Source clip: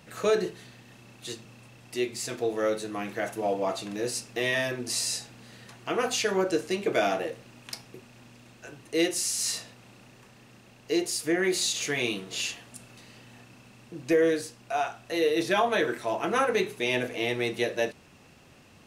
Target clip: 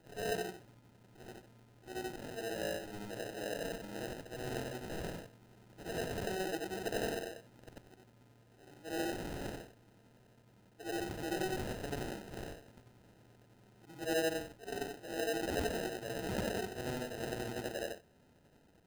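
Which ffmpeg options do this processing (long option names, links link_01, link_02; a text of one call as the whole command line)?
ffmpeg -i in.wav -af "afftfilt=real='re':imag='-im':win_size=8192:overlap=0.75,acrusher=samples=39:mix=1:aa=0.000001,volume=-7dB" out.wav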